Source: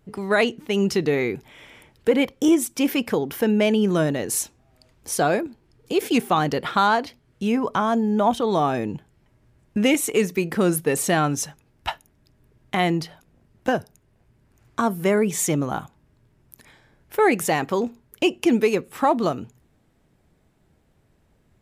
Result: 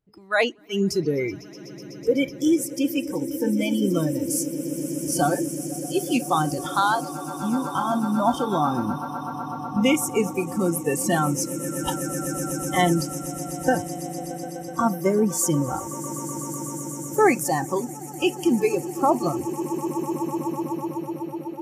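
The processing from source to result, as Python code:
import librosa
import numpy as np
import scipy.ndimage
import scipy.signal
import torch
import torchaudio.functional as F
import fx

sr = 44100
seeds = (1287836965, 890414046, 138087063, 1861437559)

y = fx.echo_swell(x, sr, ms=125, loudest=8, wet_db=-14)
y = fx.noise_reduce_blind(y, sr, reduce_db=20)
y = fx.rider(y, sr, range_db=5, speed_s=2.0)
y = y * 10.0 ** (-1.5 / 20.0)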